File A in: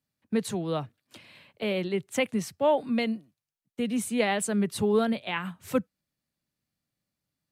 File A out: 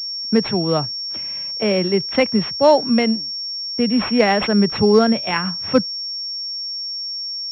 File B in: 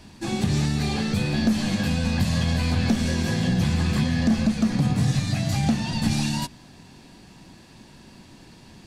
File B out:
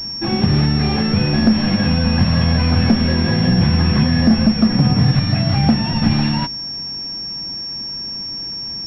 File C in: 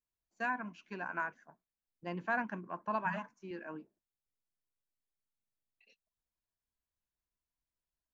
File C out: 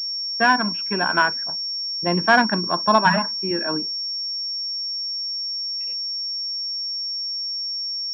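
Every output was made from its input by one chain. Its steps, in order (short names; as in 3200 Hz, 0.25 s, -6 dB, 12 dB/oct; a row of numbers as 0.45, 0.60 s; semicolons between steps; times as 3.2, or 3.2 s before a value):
pulse-width modulation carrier 5500 Hz; normalise peaks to -3 dBFS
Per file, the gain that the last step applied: +10.5, +8.0, +18.5 dB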